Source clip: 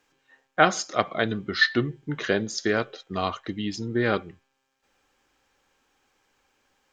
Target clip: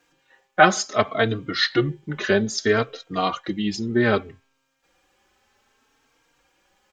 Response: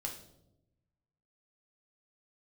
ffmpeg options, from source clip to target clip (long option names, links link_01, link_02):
-filter_complex "[0:a]asplit=2[link_01][link_02];[link_02]adelay=3.8,afreqshift=0.63[link_03];[link_01][link_03]amix=inputs=2:normalize=1,volume=7dB"